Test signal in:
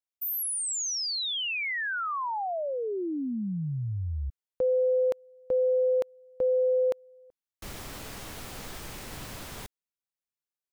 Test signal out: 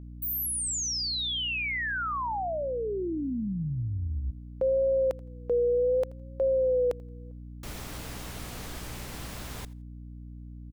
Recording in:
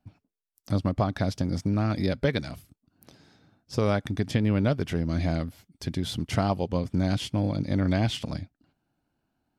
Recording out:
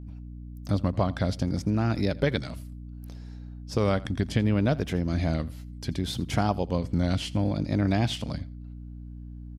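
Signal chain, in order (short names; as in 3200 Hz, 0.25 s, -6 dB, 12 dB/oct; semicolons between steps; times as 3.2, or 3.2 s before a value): feedback echo 83 ms, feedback 17%, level -21.5 dB; vibrato 0.67 Hz 93 cents; hum 60 Hz, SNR 12 dB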